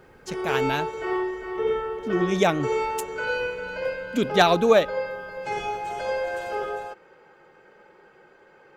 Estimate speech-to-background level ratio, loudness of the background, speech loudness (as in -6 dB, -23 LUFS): 5.5 dB, -29.0 LUFS, -23.5 LUFS